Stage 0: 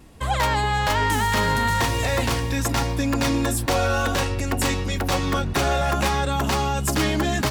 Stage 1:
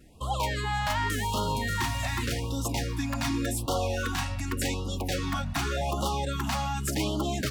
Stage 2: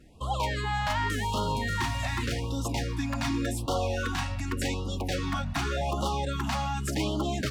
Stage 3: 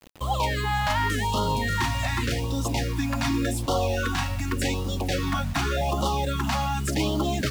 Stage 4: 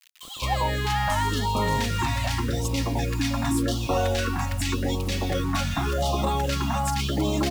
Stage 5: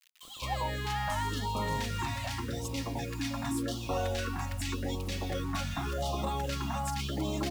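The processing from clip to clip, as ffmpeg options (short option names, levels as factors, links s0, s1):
-af "afftfilt=real='re*(1-between(b*sr/1024,380*pow(2000/380,0.5+0.5*sin(2*PI*0.87*pts/sr))/1.41,380*pow(2000/380,0.5+0.5*sin(2*PI*0.87*pts/sr))*1.41))':imag='im*(1-between(b*sr/1024,380*pow(2000/380,0.5+0.5*sin(2*PI*0.87*pts/sr))/1.41,380*pow(2000/380,0.5+0.5*sin(2*PI*0.87*pts/sr))*1.41))':win_size=1024:overlap=0.75,volume=0.473"
-af "highshelf=f=9700:g=-11.5"
-af "acrusher=bits=7:mix=0:aa=0.000001,volume=1.58"
-filter_complex "[0:a]acrossover=split=1700[s0][s1];[s0]adelay=210[s2];[s2][s1]amix=inputs=2:normalize=0,volume=1.12"
-af "bandreject=f=60:t=h:w=6,bandreject=f=120:t=h:w=6,bandreject=f=180:t=h:w=6,bandreject=f=240:t=h:w=6,bandreject=f=300:t=h:w=6,bandreject=f=360:t=h:w=6,bandreject=f=420:t=h:w=6,volume=0.398"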